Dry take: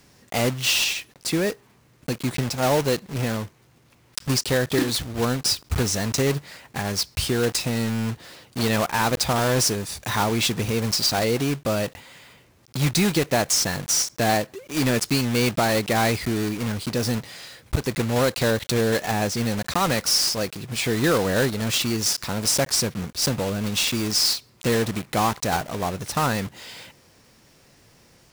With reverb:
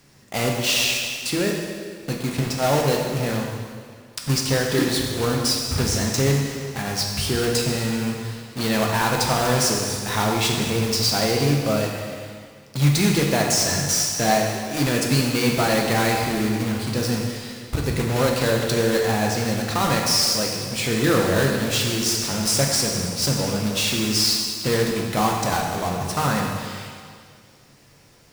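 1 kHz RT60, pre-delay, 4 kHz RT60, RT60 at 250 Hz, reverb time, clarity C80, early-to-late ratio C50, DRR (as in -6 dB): 2.0 s, 5 ms, 1.9 s, 2.0 s, 2.0 s, 3.5 dB, 2.0 dB, -0.5 dB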